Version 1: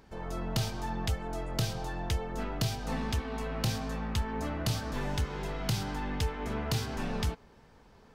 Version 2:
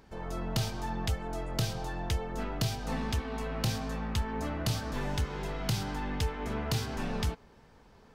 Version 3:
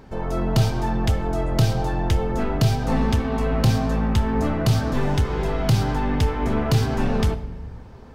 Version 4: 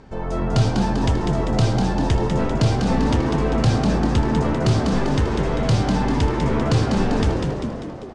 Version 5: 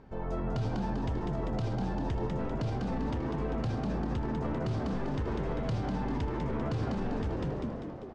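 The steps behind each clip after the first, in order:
no processing that can be heard
tilt shelving filter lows +4 dB, about 1,400 Hz; in parallel at −9.5 dB: hard clipping −28.5 dBFS, distortion −9 dB; on the sum: convolution reverb RT60 1.2 s, pre-delay 8 ms, DRR 10.5 dB; level +6.5 dB
Butterworth low-pass 8,900 Hz 36 dB per octave; echo with shifted repeats 197 ms, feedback 56%, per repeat +79 Hz, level −5 dB
low-pass filter 2,100 Hz 6 dB per octave; brickwall limiter −16.5 dBFS, peak gain reduction 9.5 dB; level −8.5 dB

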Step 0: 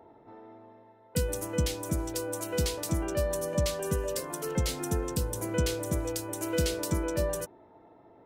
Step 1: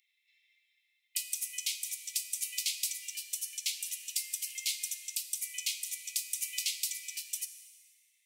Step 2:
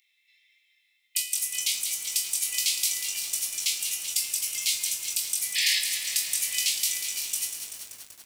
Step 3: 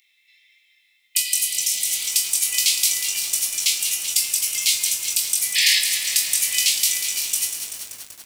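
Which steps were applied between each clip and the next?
in parallel at −0.5 dB: downward compressor, threshold −35 dBFS, peak gain reduction 12 dB; on the sum: Butterworth high-pass 2,100 Hz 96 dB per octave; dense smooth reverb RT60 1.6 s, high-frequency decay 1×, DRR 9 dB
sound drawn into the spectrogram noise, 0:05.55–0:05.79, 1,700–5,400 Hz −33 dBFS; on a send: flutter between parallel walls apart 3.7 metres, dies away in 0.23 s; on the sum: feedback echo at a low word length 192 ms, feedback 80%, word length 8 bits, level −8 dB; level +6 dB
healed spectral selection 0:01.27–0:02.04, 900–5,100 Hz both; level +7 dB

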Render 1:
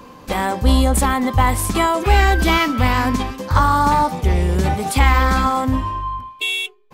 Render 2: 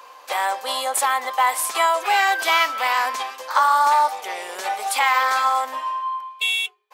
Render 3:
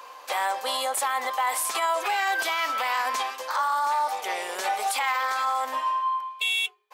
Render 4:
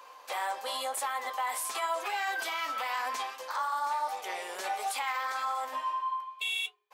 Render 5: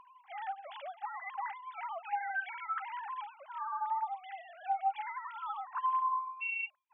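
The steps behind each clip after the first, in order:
high-pass filter 620 Hz 24 dB per octave
brickwall limiter −17.5 dBFS, peak gain reduction 11 dB
flanger 0.89 Hz, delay 8.9 ms, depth 5.8 ms, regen −52%; level −3 dB
three sine waves on the formant tracks; level −4 dB

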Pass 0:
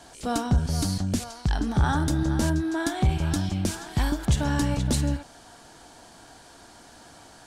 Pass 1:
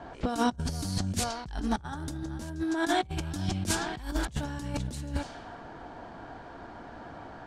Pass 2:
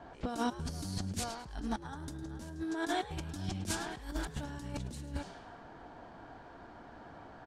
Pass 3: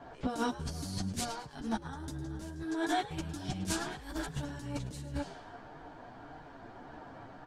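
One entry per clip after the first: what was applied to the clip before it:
low-pass that shuts in the quiet parts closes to 1,400 Hz, open at −21.5 dBFS; compressor whose output falls as the input rises −30 dBFS, ratio −0.5
echo with shifted repeats 106 ms, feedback 34%, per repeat +110 Hz, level −16 dB; level −7 dB
multi-voice chorus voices 6, 0.6 Hz, delay 11 ms, depth 4.6 ms; level +4.5 dB

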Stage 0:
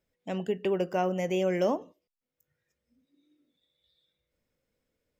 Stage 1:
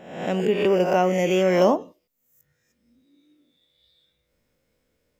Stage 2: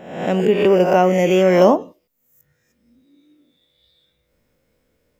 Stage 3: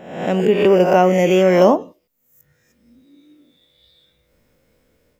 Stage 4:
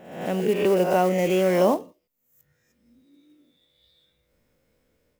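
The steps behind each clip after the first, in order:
peak hold with a rise ahead of every peak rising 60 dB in 0.74 s; level +7 dB
parametric band 5,400 Hz −3.5 dB 2.6 octaves; level +6 dB
automatic gain control gain up to 5 dB
one scale factor per block 5 bits; level −7.5 dB

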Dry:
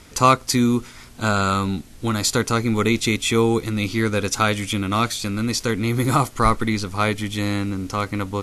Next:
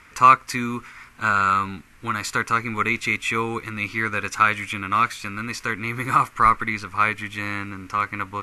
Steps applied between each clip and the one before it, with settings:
flat-topped bell 1,600 Hz +14 dB
level −10 dB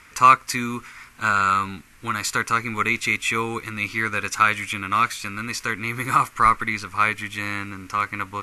high-shelf EQ 3,600 Hz +7 dB
level −1 dB

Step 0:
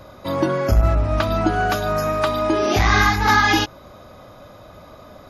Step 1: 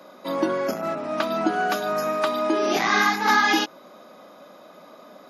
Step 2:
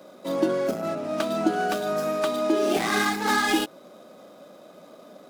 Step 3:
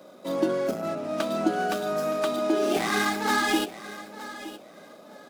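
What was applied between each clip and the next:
Butterworth high-pass 190 Hz 36 dB per octave; level −3 dB
running median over 9 samples; octave-band graphic EQ 250/1,000/2,000 Hz −3/−9/−6 dB; level +3.5 dB
repeating echo 918 ms, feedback 22%, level −15 dB; level −1.5 dB

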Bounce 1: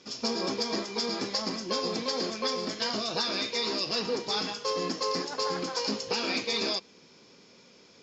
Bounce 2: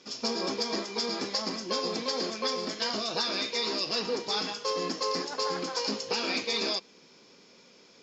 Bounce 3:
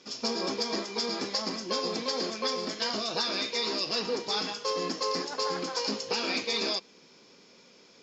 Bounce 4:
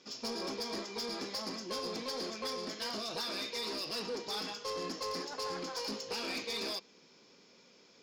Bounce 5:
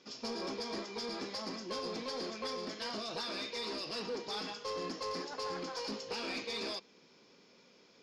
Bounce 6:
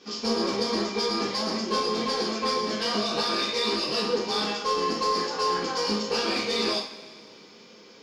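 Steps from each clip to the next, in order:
parametric band 68 Hz −9.5 dB 1.9 octaves
no processing that can be heard
soft clipping −27 dBFS, distortion −14 dB; level −5 dB
high-frequency loss of the air 66 metres
coupled-rooms reverb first 0.38 s, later 2.1 s, from −18 dB, DRR −5 dB; level +6 dB

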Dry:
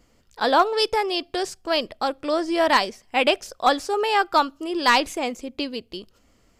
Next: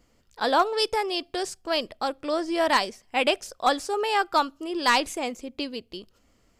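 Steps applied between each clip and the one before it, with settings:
dynamic equaliser 8,900 Hz, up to +5 dB, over −43 dBFS, Q 1.2
level −3.5 dB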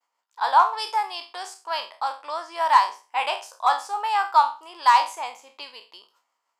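peak hold with a decay on every bin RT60 0.32 s
downward expander −55 dBFS
high-pass with resonance 940 Hz, resonance Q 5.3
level −6 dB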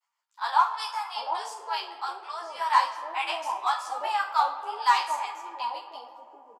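multiband delay without the direct sound highs, lows 740 ms, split 740 Hz
convolution reverb RT60 3.9 s, pre-delay 70 ms, DRR 12 dB
string-ensemble chorus

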